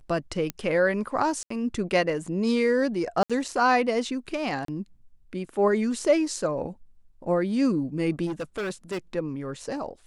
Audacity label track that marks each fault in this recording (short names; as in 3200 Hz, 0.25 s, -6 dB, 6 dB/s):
0.500000	0.500000	pop -13 dBFS
1.430000	1.500000	gap 74 ms
3.230000	3.300000	gap 66 ms
4.650000	4.680000	gap 33 ms
8.260000	8.980000	clipped -27 dBFS